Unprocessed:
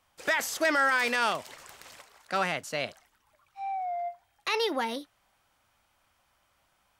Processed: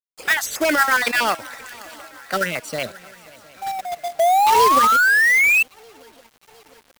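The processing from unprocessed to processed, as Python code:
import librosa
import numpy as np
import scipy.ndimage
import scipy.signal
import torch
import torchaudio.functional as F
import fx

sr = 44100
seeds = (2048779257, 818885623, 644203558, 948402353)

p1 = fx.spec_dropout(x, sr, seeds[0], share_pct=32)
p2 = fx.level_steps(p1, sr, step_db=10)
p3 = p1 + F.gain(torch.from_numpy(p2), 1.0).numpy()
p4 = fx.harmonic_tremolo(p3, sr, hz=8.0, depth_pct=50, crossover_hz=550.0)
p5 = p4 + fx.echo_swing(p4, sr, ms=708, ratio=3, feedback_pct=54, wet_db=-22, dry=0)
p6 = fx.spec_paint(p5, sr, seeds[1], shape='rise', start_s=4.19, length_s=1.44, low_hz=650.0, high_hz=2700.0, level_db=-20.0)
p7 = fx.quant_companded(p6, sr, bits=4)
y = F.gain(torch.from_numpy(p7), 5.5).numpy()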